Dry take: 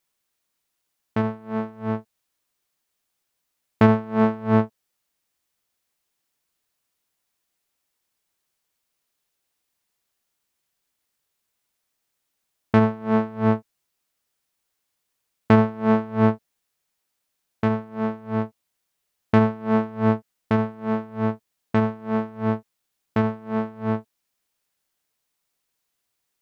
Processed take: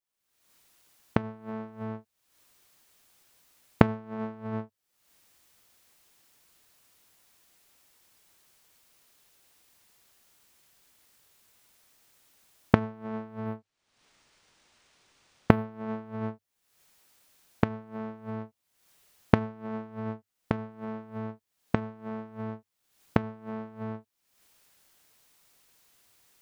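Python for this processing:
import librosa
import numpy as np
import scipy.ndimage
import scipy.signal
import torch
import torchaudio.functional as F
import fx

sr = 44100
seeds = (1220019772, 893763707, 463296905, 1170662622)

y = fx.recorder_agc(x, sr, target_db=-13.0, rise_db_per_s=58.0, max_gain_db=30)
y = fx.peak_eq(y, sr, hz=100.0, db=4.0, octaves=0.22)
y = fx.resample_linear(y, sr, factor=3, at=(13.46, 15.65))
y = y * 10.0 ** (-16.5 / 20.0)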